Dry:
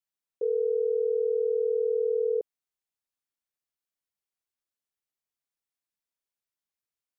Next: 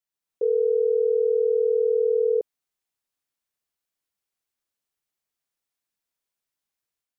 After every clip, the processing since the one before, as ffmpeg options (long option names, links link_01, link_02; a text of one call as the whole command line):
ffmpeg -i in.wav -af "dynaudnorm=framelen=100:gausssize=5:maxgain=5dB" out.wav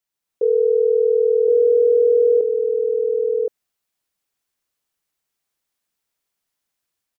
ffmpeg -i in.wav -af "aecho=1:1:1069:0.668,volume=5dB" out.wav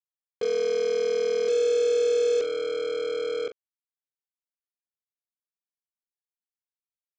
ffmpeg -i in.wav -filter_complex "[0:a]aresample=16000,acrusher=bits=3:mix=0:aa=0.5,aresample=44100,asplit=2[link_01][link_02];[link_02]adelay=40,volume=-11dB[link_03];[link_01][link_03]amix=inputs=2:normalize=0,volume=-8.5dB" out.wav